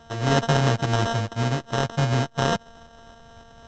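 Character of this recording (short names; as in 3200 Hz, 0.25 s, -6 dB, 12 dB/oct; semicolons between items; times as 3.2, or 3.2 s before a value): a buzz of ramps at a fixed pitch in blocks of 64 samples; tremolo saw up 3.5 Hz, depth 35%; aliases and images of a low sample rate 2300 Hz, jitter 0%; µ-law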